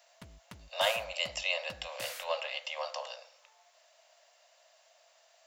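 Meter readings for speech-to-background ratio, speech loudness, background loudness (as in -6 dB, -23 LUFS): 12.5 dB, -34.5 LUFS, -47.0 LUFS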